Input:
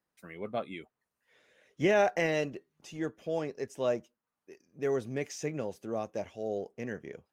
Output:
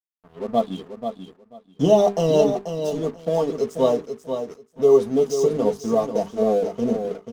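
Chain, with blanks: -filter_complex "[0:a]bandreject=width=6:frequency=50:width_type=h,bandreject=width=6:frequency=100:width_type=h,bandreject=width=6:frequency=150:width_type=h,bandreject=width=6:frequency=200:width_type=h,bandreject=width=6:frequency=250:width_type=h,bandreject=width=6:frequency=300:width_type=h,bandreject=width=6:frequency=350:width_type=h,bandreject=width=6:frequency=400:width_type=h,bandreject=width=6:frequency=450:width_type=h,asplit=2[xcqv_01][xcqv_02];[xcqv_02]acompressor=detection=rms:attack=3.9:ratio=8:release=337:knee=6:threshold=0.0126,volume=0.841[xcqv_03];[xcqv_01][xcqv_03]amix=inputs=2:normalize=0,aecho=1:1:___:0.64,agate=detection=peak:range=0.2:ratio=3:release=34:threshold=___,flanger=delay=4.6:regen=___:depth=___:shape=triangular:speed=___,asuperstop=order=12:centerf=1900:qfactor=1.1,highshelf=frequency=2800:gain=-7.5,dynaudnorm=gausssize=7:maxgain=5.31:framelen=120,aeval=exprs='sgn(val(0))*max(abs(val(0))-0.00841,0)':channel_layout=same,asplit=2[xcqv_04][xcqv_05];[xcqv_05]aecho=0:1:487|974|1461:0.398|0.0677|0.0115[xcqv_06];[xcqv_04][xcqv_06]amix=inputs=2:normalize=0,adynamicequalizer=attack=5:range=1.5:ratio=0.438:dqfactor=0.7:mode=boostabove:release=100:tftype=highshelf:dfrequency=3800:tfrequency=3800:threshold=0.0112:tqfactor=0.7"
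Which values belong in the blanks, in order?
4.4, 0.00178, 26, 7.8, 0.47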